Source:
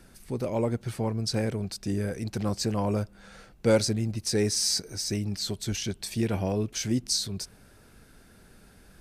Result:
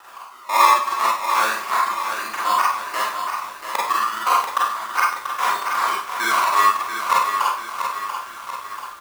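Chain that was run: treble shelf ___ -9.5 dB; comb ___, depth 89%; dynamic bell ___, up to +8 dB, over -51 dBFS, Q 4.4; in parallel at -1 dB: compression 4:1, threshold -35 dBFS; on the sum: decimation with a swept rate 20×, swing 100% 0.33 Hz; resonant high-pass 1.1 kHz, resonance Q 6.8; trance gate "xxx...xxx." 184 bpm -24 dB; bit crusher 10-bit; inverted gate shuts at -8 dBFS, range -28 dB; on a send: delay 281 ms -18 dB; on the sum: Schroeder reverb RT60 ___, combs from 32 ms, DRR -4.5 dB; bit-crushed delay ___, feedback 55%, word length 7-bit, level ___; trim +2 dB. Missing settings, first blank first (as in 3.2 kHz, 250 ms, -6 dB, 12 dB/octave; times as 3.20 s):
11 kHz, 3.1 ms, 8.3 kHz, 0.45 s, 687 ms, -7.5 dB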